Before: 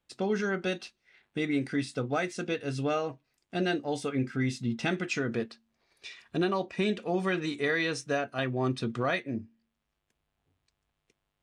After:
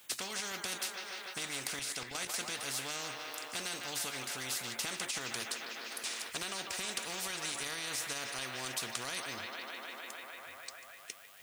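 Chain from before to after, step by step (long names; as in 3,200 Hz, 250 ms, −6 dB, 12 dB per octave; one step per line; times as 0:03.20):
spectral tilt +4.5 dB per octave
delay with a band-pass on its return 150 ms, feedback 71%, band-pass 1,200 Hz, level −11 dB
0:01.79–0:02.34: output level in coarse steps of 10 dB
brickwall limiter −22 dBFS, peak gain reduction 11 dB
every bin compressed towards the loudest bin 4 to 1
level +4.5 dB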